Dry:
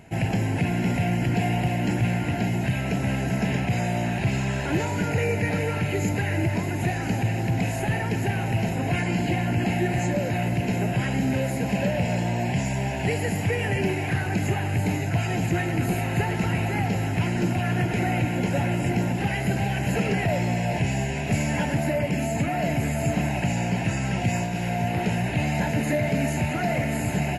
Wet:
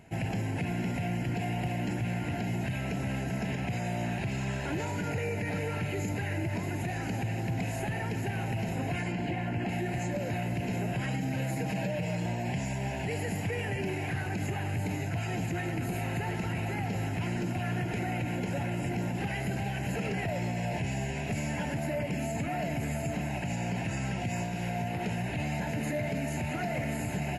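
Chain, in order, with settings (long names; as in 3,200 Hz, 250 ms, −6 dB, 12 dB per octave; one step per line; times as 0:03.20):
0:09.12–0:09.69: bass and treble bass −2 dB, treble −10 dB
0:11.06–0:12.26: comb filter 6.4 ms, depth 91%
brickwall limiter −18 dBFS, peak gain reduction 8.5 dB
level −6 dB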